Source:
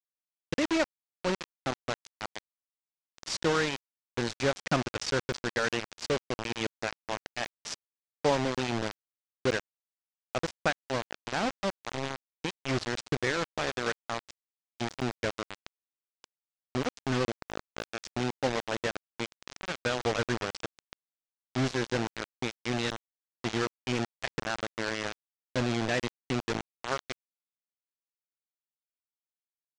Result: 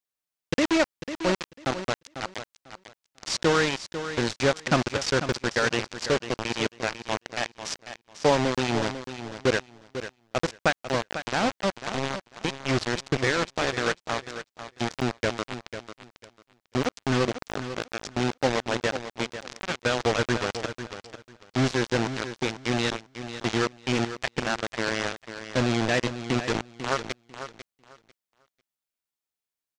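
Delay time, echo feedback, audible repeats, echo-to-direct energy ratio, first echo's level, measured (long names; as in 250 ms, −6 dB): 496 ms, 19%, 2, −11.0 dB, −11.0 dB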